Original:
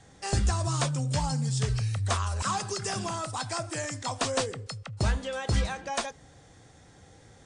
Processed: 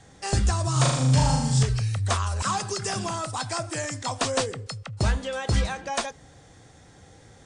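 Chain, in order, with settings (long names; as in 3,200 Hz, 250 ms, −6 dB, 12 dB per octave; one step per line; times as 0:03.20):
0:00.72–0:01.63: flutter between parallel walls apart 6.6 metres, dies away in 0.92 s
level +3 dB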